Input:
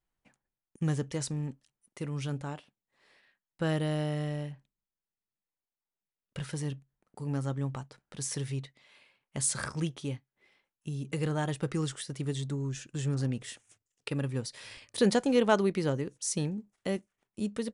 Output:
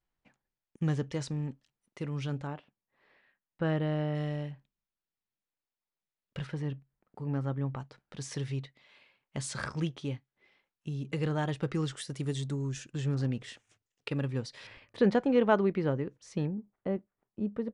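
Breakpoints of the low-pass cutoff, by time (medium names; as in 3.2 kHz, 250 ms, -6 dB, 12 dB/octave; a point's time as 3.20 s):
4.8 kHz
from 2.47 s 2.4 kHz
from 4.15 s 4.5 kHz
from 6.47 s 2.5 kHz
from 7.80 s 4.8 kHz
from 11.97 s 9.4 kHz
from 12.90 s 4.7 kHz
from 14.67 s 2.2 kHz
from 16.47 s 1.2 kHz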